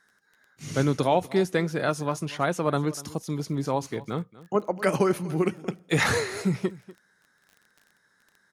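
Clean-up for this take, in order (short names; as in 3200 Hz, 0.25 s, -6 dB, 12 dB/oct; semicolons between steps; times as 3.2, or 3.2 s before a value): de-click; inverse comb 0.243 s -19 dB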